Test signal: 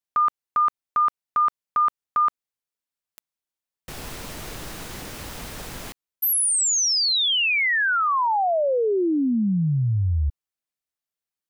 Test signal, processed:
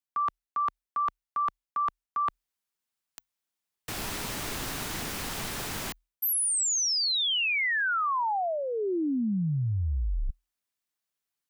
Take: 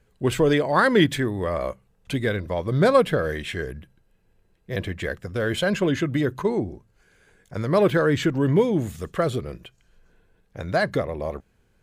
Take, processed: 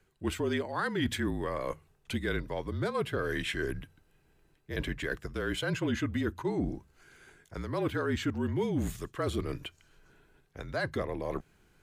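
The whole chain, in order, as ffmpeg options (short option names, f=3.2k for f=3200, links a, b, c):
-af "lowshelf=f=94:g=-9,areverse,acompressor=threshold=-29dB:ratio=6:attack=6.4:release=418:knee=1:detection=rms,areverse,afreqshift=-41,equalizer=f=530:t=o:w=0.6:g=-4.5,volume=3dB"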